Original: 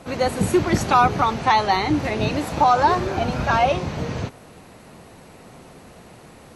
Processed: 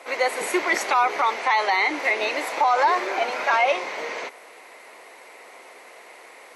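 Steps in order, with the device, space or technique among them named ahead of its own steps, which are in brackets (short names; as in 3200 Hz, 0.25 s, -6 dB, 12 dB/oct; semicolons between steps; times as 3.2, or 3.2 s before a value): laptop speaker (HPF 420 Hz 24 dB/oct; bell 1000 Hz +4 dB 0.22 oct; bell 2100 Hz +12 dB 0.38 oct; limiter -11 dBFS, peak gain reduction 8 dB)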